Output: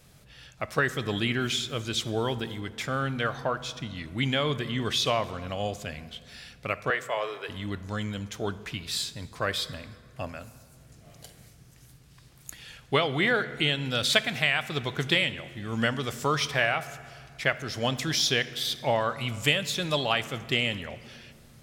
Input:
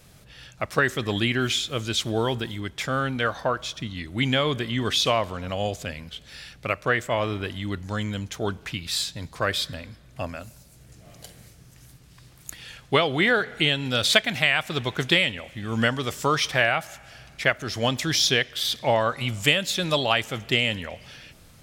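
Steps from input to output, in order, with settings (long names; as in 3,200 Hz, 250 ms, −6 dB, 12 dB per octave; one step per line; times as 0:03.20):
0:06.90–0:07.49: Chebyshev high-pass filter 410 Hz, order 4
on a send: convolution reverb RT60 2.1 s, pre-delay 3 ms, DRR 13.5 dB
on the sum: level −4 dB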